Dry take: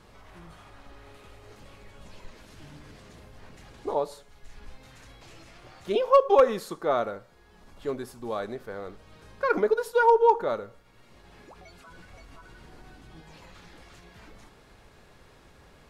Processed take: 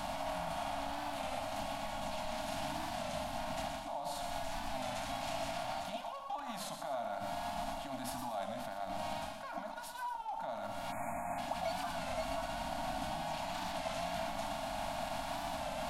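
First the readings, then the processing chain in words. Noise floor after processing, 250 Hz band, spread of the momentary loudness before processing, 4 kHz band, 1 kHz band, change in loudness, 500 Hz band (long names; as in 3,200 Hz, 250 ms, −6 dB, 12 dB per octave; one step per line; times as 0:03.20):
−45 dBFS, −4.5 dB, 20 LU, +3.5 dB, −7.0 dB, −14.5 dB, −13.5 dB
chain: compressor on every frequency bin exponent 0.6
mains-hum notches 50/100/150/200/250/300/350/400/450/500 Hz
reversed playback
downward compressor 5 to 1, threshold −34 dBFS, peak gain reduction 19.5 dB
reversed playback
brickwall limiter −33 dBFS, peak gain reduction 10 dB
elliptic band-stop filter 280–660 Hz, stop band 40 dB
tilt shelving filter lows −3.5 dB
on a send: feedback echo with a high-pass in the loop 120 ms, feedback 36%, level −8 dB
on the sum: time-frequency box erased 0:10.92–0:11.38, 2,600–6,600 Hz
drawn EQ curve 210 Hz 0 dB, 660 Hz +7 dB, 1,200 Hz −11 dB, 3,300 Hz −4 dB
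wow of a warped record 33 1/3 rpm, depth 100 cents
level +6.5 dB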